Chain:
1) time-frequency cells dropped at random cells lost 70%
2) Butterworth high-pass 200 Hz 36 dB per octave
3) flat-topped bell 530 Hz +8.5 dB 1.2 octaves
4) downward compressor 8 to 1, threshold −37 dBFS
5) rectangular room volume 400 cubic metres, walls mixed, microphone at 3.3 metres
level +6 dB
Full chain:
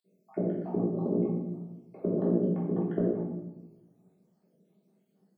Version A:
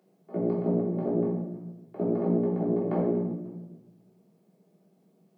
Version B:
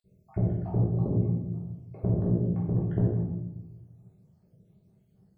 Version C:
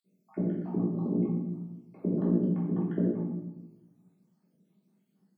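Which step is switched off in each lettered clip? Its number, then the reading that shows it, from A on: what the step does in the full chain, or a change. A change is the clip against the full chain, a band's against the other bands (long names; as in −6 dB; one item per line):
1, 1 kHz band +3.5 dB
2, 125 Hz band +10.5 dB
3, 500 Hz band −6.0 dB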